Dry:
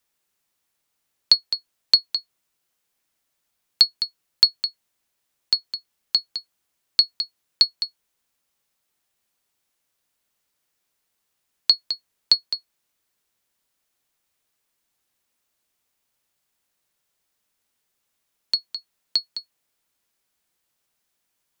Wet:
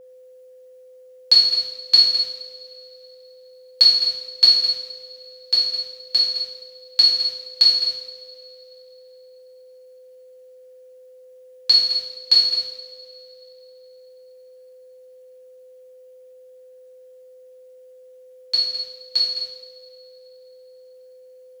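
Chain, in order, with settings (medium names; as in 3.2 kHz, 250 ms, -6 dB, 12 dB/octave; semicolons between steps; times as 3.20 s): two-slope reverb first 0.81 s, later 3.3 s, from -21 dB, DRR -9.5 dB; whistle 510 Hz -38 dBFS; trim -6 dB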